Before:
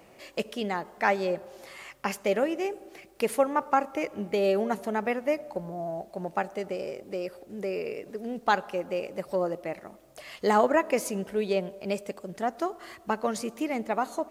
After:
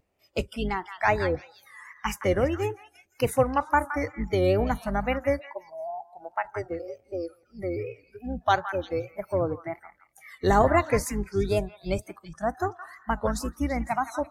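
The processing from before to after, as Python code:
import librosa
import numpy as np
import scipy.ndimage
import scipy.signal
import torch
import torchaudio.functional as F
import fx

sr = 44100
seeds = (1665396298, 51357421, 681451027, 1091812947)

y = fx.octave_divider(x, sr, octaves=2, level_db=1.0)
y = fx.highpass(y, sr, hz=450.0, slope=6, at=(5.4, 6.45))
y = fx.noise_reduce_blind(y, sr, reduce_db=24)
y = fx.wow_flutter(y, sr, seeds[0], rate_hz=2.1, depth_cents=140.0)
y = fx.echo_stepped(y, sr, ms=168, hz=1500.0, octaves=1.4, feedback_pct=70, wet_db=-7)
y = y * 10.0 ** (1.5 / 20.0)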